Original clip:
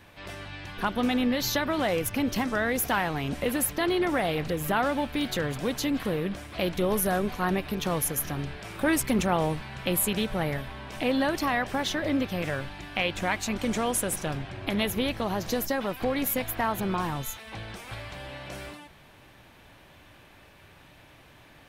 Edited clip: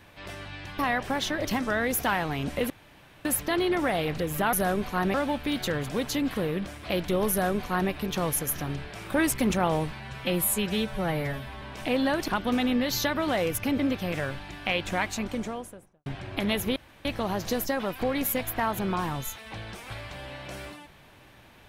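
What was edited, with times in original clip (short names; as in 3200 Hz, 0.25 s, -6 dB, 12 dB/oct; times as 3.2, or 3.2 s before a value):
0.79–2.3 swap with 11.43–12.09
3.55 insert room tone 0.55 s
6.99–7.6 copy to 4.83
9.69–10.77 stretch 1.5×
13.27–14.36 studio fade out
15.06 insert room tone 0.29 s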